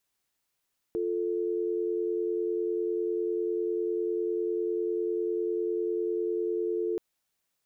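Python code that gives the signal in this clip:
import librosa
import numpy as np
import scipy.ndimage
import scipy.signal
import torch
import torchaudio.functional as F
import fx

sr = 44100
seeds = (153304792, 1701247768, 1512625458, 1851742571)

y = fx.call_progress(sr, length_s=6.03, kind='dial tone', level_db=-29.5)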